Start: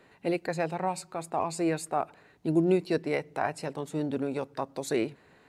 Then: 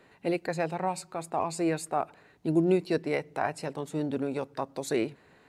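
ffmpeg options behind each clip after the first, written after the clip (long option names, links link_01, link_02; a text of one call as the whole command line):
ffmpeg -i in.wav -af anull out.wav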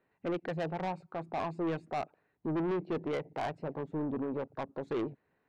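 ffmpeg -i in.wav -af "afwtdn=0.01,lowpass=2500,asoftclip=type=tanh:threshold=-29dB" out.wav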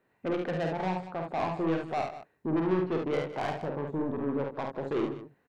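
ffmpeg -i in.wav -af "aecho=1:1:49|71|160|198:0.596|0.501|0.141|0.2,volume=2.5dB" out.wav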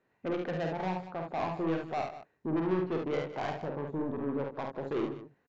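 ffmpeg -i in.wav -af "aresample=16000,aresample=44100,volume=-2.5dB" out.wav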